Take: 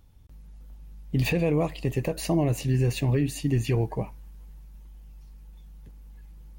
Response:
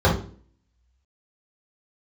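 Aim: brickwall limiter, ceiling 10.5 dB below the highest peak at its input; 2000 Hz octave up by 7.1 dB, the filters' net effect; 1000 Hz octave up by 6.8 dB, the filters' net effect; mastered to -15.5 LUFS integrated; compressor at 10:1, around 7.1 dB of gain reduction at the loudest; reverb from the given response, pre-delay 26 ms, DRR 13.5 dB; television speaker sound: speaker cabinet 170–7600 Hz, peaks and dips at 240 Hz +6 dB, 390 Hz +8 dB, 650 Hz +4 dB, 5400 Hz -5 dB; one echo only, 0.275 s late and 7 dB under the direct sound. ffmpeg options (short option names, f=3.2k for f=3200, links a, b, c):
-filter_complex "[0:a]equalizer=f=1k:t=o:g=5.5,equalizer=f=2k:t=o:g=8.5,acompressor=threshold=-26dB:ratio=10,alimiter=level_in=3.5dB:limit=-24dB:level=0:latency=1,volume=-3.5dB,aecho=1:1:275:0.447,asplit=2[a][b];[1:a]atrim=start_sample=2205,adelay=26[c];[b][c]afir=irnorm=-1:irlink=0,volume=-34dB[d];[a][d]amix=inputs=2:normalize=0,highpass=f=170:w=0.5412,highpass=f=170:w=1.3066,equalizer=f=240:t=q:w=4:g=6,equalizer=f=390:t=q:w=4:g=8,equalizer=f=650:t=q:w=4:g=4,equalizer=f=5.4k:t=q:w=4:g=-5,lowpass=f=7.6k:w=0.5412,lowpass=f=7.6k:w=1.3066,volume=19dB"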